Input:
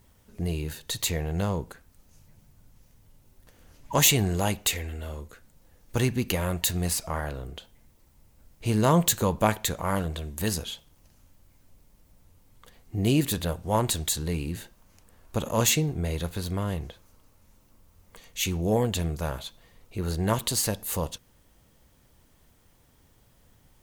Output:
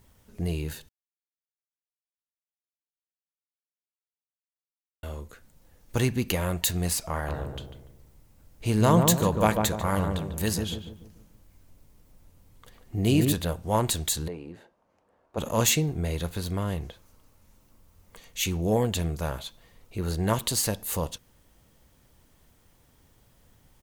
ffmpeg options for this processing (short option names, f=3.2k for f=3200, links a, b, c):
-filter_complex "[0:a]asplit=3[a][b][c];[a]afade=t=out:st=7.27:d=0.02[d];[b]asplit=2[e][f];[f]adelay=146,lowpass=f=940:p=1,volume=-3dB,asplit=2[g][h];[h]adelay=146,lowpass=f=940:p=1,volume=0.46,asplit=2[i][j];[j]adelay=146,lowpass=f=940:p=1,volume=0.46,asplit=2[k][l];[l]adelay=146,lowpass=f=940:p=1,volume=0.46,asplit=2[m][n];[n]adelay=146,lowpass=f=940:p=1,volume=0.46,asplit=2[o][p];[p]adelay=146,lowpass=f=940:p=1,volume=0.46[q];[e][g][i][k][m][o][q]amix=inputs=7:normalize=0,afade=t=in:st=7.27:d=0.02,afade=t=out:st=13.32:d=0.02[r];[c]afade=t=in:st=13.32:d=0.02[s];[d][r][s]amix=inputs=3:normalize=0,asplit=3[t][u][v];[t]afade=t=out:st=14.27:d=0.02[w];[u]bandpass=f=630:t=q:w=1.1,afade=t=in:st=14.27:d=0.02,afade=t=out:st=15.37:d=0.02[x];[v]afade=t=in:st=15.37:d=0.02[y];[w][x][y]amix=inputs=3:normalize=0,asplit=3[z][aa][ab];[z]atrim=end=0.89,asetpts=PTS-STARTPTS,afade=t=out:st=0.886:d=0.004:c=hsin[ac];[aa]atrim=start=0.89:end=5.03,asetpts=PTS-STARTPTS,volume=0[ad];[ab]atrim=start=5.03,asetpts=PTS-STARTPTS,afade=t=in:d=0.004:c=hsin[ae];[ac][ad][ae]concat=n=3:v=0:a=1"